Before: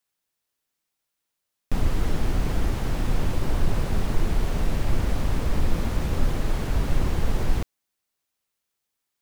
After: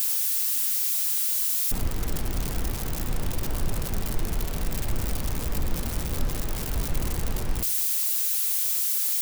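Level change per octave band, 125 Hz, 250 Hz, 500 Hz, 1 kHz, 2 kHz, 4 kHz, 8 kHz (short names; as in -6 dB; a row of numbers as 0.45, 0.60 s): -4.5, -4.5, -4.5, -4.0, -2.0, +5.0, +16.0 dB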